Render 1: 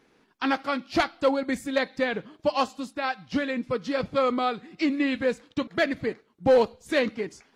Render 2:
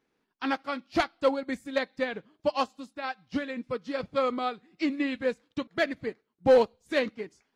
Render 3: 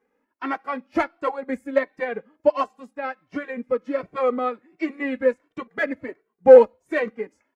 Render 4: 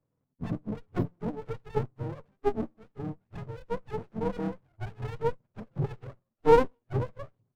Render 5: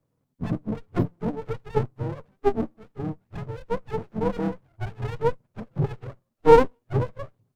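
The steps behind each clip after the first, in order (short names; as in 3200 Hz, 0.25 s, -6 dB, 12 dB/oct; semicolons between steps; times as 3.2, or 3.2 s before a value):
upward expander 1.5:1, over -43 dBFS
graphic EQ 125/250/500/1000/2000/4000 Hz -5/+5/+9/+5/+8/-11 dB; endless flanger 2.1 ms +1.4 Hz
spectrum mirrored in octaves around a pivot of 490 Hz; running maximum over 33 samples; gain -5.5 dB
vibrato 5.9 Hz 35 cents; gain +5.5 dB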